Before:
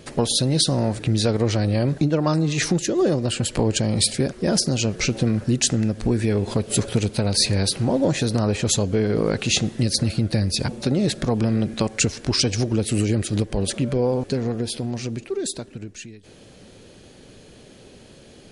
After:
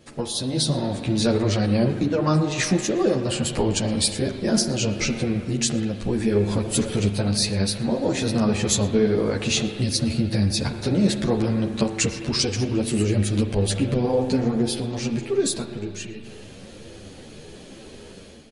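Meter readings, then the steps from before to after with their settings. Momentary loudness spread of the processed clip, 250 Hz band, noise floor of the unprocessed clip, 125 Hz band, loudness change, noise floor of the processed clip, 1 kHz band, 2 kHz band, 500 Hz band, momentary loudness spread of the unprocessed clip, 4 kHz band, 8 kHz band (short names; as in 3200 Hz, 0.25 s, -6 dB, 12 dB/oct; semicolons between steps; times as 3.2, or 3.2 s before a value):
16 LU, 0.0 dB, -47 dBFS, -2.0 dB, -1.0 dB, -43 dBFS, 0.0 dB, -0.5 dB, 0.0 dB, 6 LU, -2.0 dB, -2.0 dB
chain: spring tank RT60 2.3 s, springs 39 ms, chirp 40 ms, DRR 7 dB; AGC; outdoor echo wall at 20 m, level -23 dB; ensemble effect; gain -4.5 dB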